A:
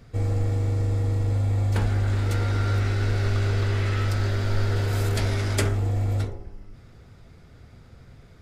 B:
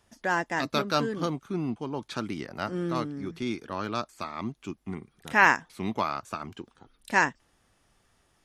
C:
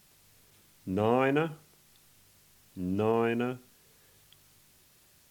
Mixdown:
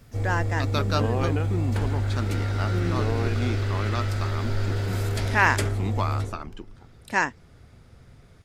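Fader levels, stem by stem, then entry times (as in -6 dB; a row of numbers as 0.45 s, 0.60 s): -2.5 dB, -0.5 dB, -4.0 dB; 0.00 s, 0.00 s, 0.00 s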